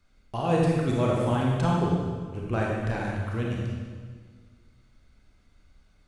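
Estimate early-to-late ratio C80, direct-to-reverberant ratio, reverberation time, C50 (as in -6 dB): 1.0 dB, -3.5 dB, 1.7 s, -1.0 dB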